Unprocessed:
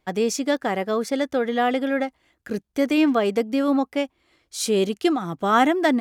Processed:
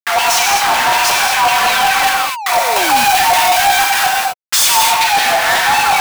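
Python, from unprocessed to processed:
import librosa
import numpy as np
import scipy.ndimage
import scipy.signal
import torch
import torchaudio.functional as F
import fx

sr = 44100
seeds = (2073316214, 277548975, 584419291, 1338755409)

y = fx.band_swap(x, sr, width_hz=500)
y = fx.tube_stage(y, sr, drive_db=18.0, bias=0.25)
y = fx.schmitt(y, sr, flips_db=-45.5)
y = fx.low_shelf(y, sr, hz=320.0, db=10.0)
y = fx.filter_lfo_highpass(y, sr, shape='saw_down', hz=5.4, low_hz=690.0, high_hz=2900.0, q=2.1)
y = fx.high_shelf(y, sr, hz=5500.0, db=6.5, at=(2.03, 4.73))
y = fx.rev_gated(y, sr, seeds[0], gate_ms=280, shape='flat', drr_db=-1.5)
y = fx.spec_paint(y, sr, seeds[1], shape='fall', start_s=1.66, length_s=1.39, low_hz=220.0, high_hz=4300.0, level_db=-35.0)
y = fx.leveller(y, sr, passes=3)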